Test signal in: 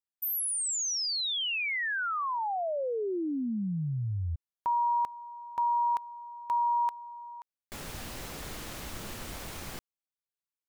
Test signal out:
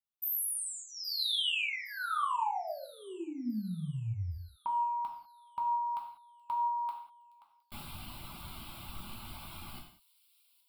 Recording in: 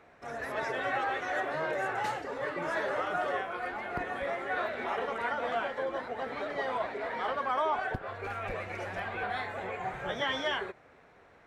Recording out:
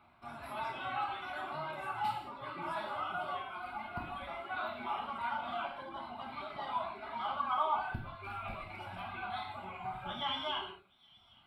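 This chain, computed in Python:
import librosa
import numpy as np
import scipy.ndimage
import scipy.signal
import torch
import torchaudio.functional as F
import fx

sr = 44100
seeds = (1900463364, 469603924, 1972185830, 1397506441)

y = fx.dereverb_blind(x, sr, rt60_s=1.3)
y = fx.fixed_phaser(y, sr, hz=1800.0, stages=6)
y = fx.echo_wet_highpass(y, sr, ms=817, feedback_pct=53, hz=4300.0, wet_db=-17.0)
y = fx.rev_gated(y, sr, seeds[0], gate_ms=220, shape='falling', drr_db=-0.5)
y = y * librosa.db_to_amplitude(-3.0)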